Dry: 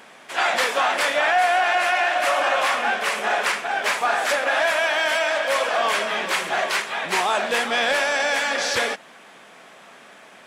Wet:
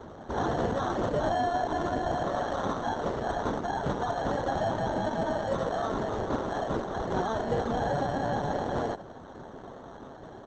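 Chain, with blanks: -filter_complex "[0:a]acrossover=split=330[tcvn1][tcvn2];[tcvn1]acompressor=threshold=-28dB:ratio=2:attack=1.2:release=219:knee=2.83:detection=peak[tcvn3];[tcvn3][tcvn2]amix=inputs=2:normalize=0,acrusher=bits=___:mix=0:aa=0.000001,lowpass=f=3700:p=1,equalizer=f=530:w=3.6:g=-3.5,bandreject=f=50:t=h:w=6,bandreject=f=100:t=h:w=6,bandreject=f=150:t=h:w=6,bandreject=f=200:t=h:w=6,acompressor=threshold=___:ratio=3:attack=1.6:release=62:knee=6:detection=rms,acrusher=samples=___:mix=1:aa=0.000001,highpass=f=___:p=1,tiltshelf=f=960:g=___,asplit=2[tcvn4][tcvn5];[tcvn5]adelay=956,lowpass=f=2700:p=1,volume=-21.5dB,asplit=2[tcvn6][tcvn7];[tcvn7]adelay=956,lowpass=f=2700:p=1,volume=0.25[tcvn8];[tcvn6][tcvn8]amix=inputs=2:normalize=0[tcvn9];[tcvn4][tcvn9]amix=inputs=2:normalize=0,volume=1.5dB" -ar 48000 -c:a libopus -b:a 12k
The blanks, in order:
9, -31dB, 18, 67, 9.5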